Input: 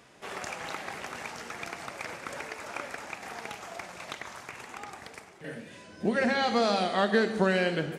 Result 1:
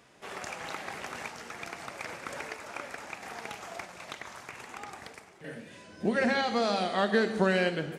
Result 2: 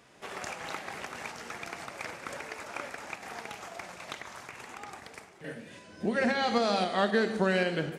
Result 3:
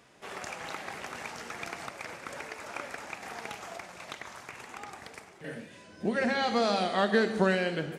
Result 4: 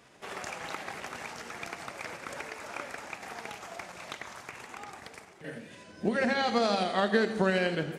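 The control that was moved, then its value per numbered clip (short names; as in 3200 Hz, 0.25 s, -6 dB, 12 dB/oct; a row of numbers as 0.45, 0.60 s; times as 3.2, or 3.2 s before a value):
tremolo, rate: 0.78, 3.8, 0.53, 12 Hz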